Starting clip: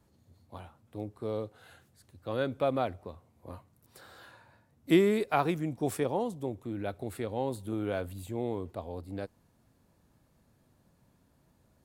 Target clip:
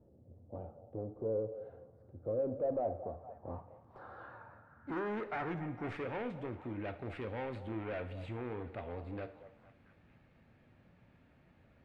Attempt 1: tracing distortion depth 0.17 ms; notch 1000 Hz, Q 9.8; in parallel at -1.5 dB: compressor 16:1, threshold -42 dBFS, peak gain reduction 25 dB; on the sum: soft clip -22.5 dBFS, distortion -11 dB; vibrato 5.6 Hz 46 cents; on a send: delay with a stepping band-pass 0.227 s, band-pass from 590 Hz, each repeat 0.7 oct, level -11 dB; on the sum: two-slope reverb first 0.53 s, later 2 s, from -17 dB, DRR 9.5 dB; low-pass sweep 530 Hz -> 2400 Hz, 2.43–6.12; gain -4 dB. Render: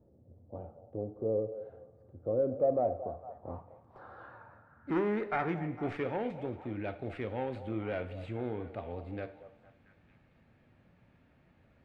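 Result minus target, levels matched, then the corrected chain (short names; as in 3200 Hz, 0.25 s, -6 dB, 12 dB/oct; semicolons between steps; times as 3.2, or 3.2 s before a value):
soft clip: distortion -7 dB
tracing distortion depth 0.17 ms; notch 1000 Hz, Q 9.8; in parallel at -1.5 dB: compressor 16:1, threshold -42 dBFS, peak gain reduction 25 dB; on the sum: soft clip -32.5 dBFS, distortion -5 dB; vibrato 5.6 Hz 46 cents; on a send: delay with a stepping band-pass 0.227 s, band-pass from 590 Hz, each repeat 0.7 oct, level -11 dB; on the sum: two-slope reverb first 0.53 s, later 2 s, from -17 dB, DRR 9.5 dB; low-pass sweep 530 Hz -> 2400 Hz, 2.43–6.12; gain -4 dB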